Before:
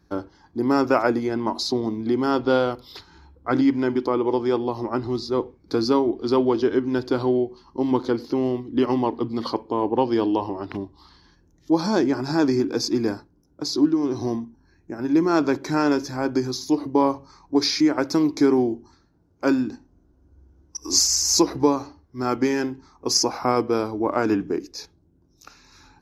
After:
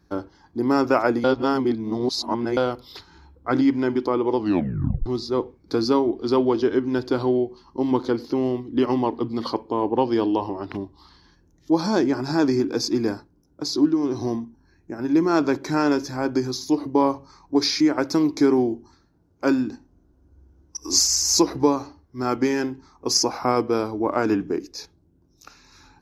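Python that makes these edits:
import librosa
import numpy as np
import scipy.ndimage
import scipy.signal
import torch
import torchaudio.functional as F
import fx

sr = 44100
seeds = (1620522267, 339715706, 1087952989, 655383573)

y = fx.edit(x, sr, fx.reverse_span(start_s=1.24, length_s=1.33),
    fx.tape_stop(start_s=4.37, length_s=0.69), tone=tone)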